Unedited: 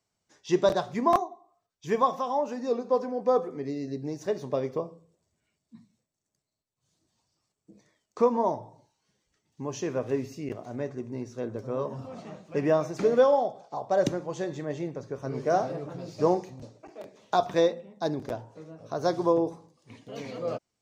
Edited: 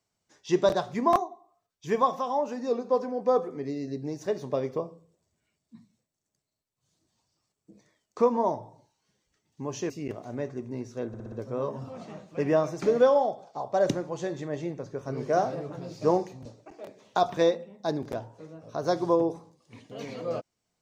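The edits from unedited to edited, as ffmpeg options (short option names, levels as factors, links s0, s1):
-filter_complex "[0:a]asplit=6[s0][s1][s2][s3][s4][s5];[s0]atrim=end=9.902[s6];[s1]atrim=start=10.308:end=11.552[s7];[s2]atrim=start=11.488:end=11.552[s8];[s3]atrim=start=11.488:end=11.552[s9];[s4]atrim=start=11.488:end=11.552[s10];[s5]atrim=start=11.488[s11];[s6][s7]acrossfade=d=0.004:c1=hsin:c2=hsin[s12];[s12][s8]acrossfade=d=0.004:c1=hsin:c2=hsin[s13];[s13][s9]acrossfade=d=0.004:c1=hsin:c2=hsin[s14];[s14][s10]acrossfade=d=0.004:c1=hsin:c2=hsin[s15];[s15][s11]acrossfade=d=0.004:c1=hsin:c2=hsin"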